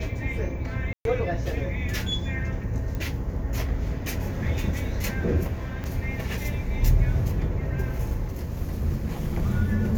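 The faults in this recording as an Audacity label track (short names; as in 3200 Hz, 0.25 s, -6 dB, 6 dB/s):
0.930000	1.050000	gap 0.122 s
2.950000	2.950000	pop -20 dBFS
5.840000	5.840000	pop -20 dBFS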